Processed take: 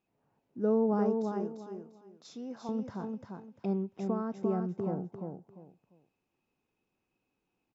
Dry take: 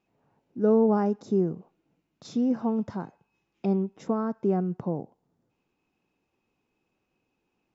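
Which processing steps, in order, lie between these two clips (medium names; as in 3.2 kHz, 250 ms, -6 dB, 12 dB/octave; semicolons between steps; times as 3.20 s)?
1.23–2.69 s: high-pass 840 Hz 6 dB/octave; on a send: feedback delay 347 ms, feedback 24%, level -4.5 dB; on the sum: trim -6.5 dB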